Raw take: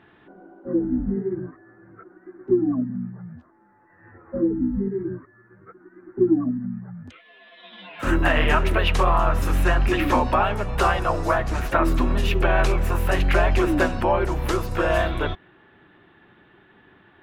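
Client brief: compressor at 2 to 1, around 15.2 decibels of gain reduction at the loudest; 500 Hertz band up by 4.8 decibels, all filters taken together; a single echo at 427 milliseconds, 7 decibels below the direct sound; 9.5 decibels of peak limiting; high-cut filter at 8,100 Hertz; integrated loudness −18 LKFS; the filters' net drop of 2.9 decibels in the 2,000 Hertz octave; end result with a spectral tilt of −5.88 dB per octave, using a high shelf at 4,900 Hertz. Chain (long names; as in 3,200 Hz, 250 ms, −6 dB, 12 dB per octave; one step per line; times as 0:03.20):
low-pass filter 8,100 Hz
parametric band 500 Hz +7 dB
parametric band 2,000 Hz −5.5 dB
high-shelf EQ 4,900 Hz +6.5 dB
downward compressor 2 to 1, threshold −40 dBFS
brickwall limiter −27 dBFS
single-tap delay 427 ms −7 dB
level +19 dB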